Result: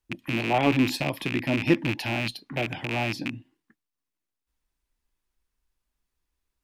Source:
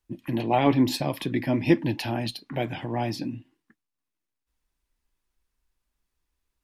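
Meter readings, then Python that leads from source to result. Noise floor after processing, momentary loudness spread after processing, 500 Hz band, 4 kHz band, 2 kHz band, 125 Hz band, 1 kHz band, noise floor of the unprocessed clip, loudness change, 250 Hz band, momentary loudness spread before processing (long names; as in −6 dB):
below −85 dBFS, 8 LU, −1.5 dB, +2.0 dB, +6.5 dB, −1.0 dB, −1.5 dB, −85 dBFS, 0.0 dB, −1.5 dB, 10 LU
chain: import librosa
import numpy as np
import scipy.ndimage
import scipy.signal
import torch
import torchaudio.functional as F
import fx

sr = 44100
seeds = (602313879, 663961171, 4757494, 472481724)

y = fx.rattle_buzz(x, sr, strikes_db=-30.0, level_db=-16.0)
y = y * 10.0 ** (-1.5 / 20.0)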